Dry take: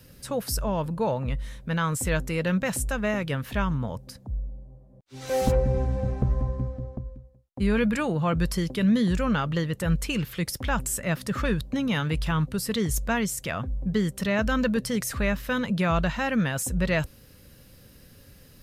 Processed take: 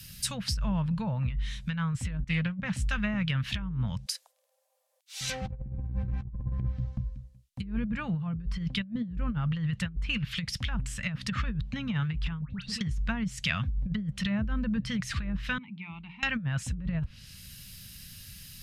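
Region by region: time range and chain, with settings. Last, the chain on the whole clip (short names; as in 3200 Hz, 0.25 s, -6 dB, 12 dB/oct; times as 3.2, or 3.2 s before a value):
2.24–2.98 HPF 40 Hz + expander -30 dBFS + Doppler distortion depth 0.28 ms
4.06–5.21 brick-wall FIR high-pass 460 Hz + high shelf 7600 Hz +7 dB
12.41–12.81 LPF 3900 Hz + compressor 5:1, threshold -33 dBFS + dispersion highs, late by 0.104 s, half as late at 1500 Hz
15.58–16.23 vowel filter u + air absorption 290 m + notches 60/120/180/240/300/360/420/480/540 Hz
whole clip: treble ducked by the level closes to 640 Hz, closed at -20 dBFS; EQ curve 190 Hz 0 dB, 370 Hz -24 dB, 2900 Hz +8 dB; negative-ratio compressor -29 dBFS, ratio -0.5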